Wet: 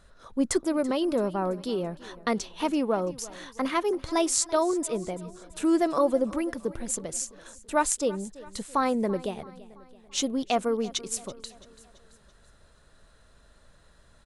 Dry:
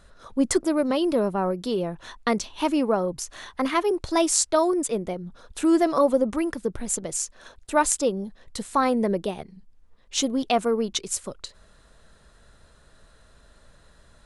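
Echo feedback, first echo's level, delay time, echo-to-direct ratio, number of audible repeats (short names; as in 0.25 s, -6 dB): 50%, -19.0 dB, 0.334 s, -18.0 dB, 3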